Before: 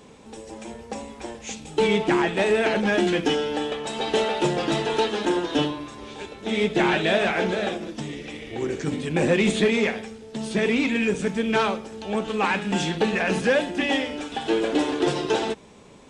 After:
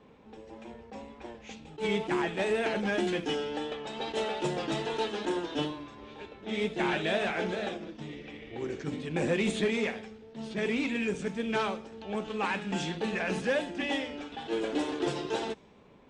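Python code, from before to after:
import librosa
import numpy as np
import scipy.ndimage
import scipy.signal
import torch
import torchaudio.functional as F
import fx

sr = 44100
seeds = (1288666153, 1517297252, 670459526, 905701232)

y = fx.env_lowpass(x, sr, base_hz=2600.0, full_db=-17.0)
y = fx.wow_flutter(y, sr, seeds[0], rate_hz=2.1, depth_cents=28.0)
y = fx.attack_slew(y, sr, db_per_s=230.0)
y = y * librosa.db_to_amplitude(-8.0)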